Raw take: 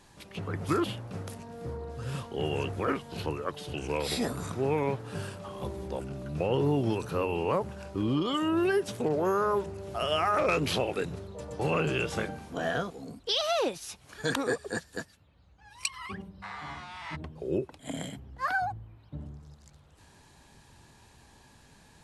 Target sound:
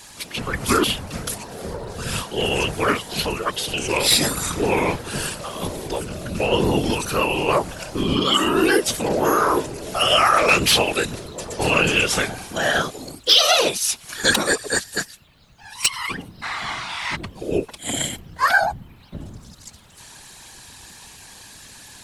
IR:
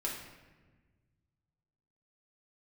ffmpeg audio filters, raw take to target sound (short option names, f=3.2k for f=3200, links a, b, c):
-af "crystalizer=i=10:c=0,acontrast=70,highshelf=f=5k:g=-8,afftfilt=real='hypot(re,im)*cos(2*PI*random(0))':imag='hypot(re,im)*sin(2*PI*random(1))':win_size=512:overlap=0.75,volume=5.5dB"